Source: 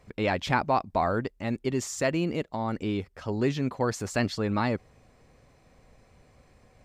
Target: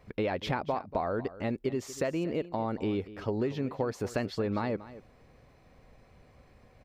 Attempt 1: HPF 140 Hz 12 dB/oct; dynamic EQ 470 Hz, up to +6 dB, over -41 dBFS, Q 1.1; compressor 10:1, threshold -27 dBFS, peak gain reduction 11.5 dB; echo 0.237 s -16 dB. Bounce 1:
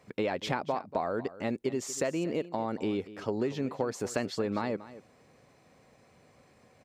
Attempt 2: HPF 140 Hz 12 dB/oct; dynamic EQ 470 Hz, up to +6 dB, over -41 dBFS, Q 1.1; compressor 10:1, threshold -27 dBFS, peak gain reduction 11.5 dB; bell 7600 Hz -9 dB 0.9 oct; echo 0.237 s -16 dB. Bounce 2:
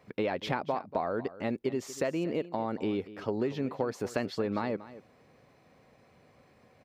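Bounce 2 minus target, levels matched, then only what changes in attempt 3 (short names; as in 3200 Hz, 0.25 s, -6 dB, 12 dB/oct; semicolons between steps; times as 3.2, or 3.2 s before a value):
125 Hz band -3.5 dB
remove: HPF 140 Hz 12 dB/oct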